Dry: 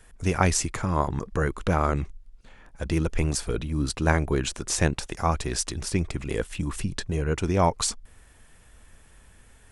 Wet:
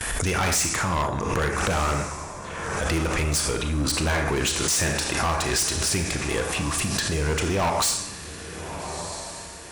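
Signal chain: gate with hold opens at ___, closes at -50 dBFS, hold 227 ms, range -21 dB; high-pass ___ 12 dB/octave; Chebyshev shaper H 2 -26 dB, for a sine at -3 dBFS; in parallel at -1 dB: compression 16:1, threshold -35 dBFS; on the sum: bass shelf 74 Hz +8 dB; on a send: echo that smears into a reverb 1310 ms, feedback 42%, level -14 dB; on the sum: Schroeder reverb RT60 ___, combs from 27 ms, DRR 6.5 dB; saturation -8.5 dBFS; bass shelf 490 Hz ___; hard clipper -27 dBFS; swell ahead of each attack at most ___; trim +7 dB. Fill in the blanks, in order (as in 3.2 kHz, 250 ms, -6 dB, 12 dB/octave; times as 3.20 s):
-46 dBFS, 58 Hz, 0.66 s, -11.5 dB, 30 dB/s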